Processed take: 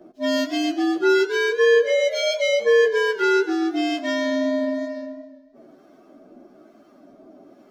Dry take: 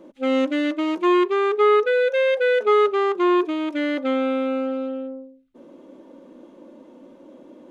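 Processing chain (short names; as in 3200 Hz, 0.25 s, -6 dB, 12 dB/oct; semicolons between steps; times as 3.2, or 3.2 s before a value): inharmonic rescaling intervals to 120%; harmonic tremolo 1.1 Hz, depth 50%, crossover 910 Hz; warbling echo 0.132 s, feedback 51%, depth 98 cents, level -16 dB; gain +3 dB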